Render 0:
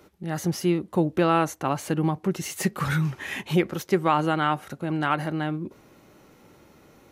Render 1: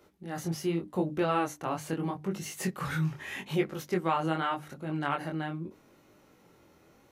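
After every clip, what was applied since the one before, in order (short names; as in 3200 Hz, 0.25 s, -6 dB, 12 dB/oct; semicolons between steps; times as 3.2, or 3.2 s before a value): notches 50/100/150/200/250/300 Hz; chorus 0.82 Hz, delay 19.5 ms, depth 5.7 ms; gain -3.5 dB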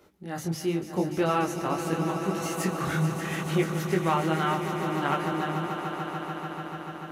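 swelling echo 0.146 s, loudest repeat 5, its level -11.5 dB; gain +2.5 dB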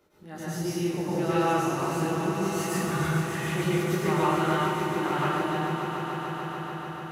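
plate-style reverb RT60 1.1 s, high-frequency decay 0.95×, pre-delay 90 ms, DRR -8 dB; gain -7.5 dB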